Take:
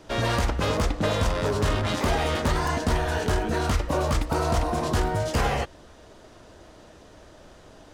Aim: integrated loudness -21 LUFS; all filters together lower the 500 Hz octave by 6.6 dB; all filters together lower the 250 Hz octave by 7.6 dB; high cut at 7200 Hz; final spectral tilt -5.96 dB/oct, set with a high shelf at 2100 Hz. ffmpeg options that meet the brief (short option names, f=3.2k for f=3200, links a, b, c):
-af "lowpass=7.2k,equalizer=f=250:t=o:g=-9,equalizer=f=500:t=o:g=-5.5,highshelf=f=2.1k:g=-8,volume=8dB"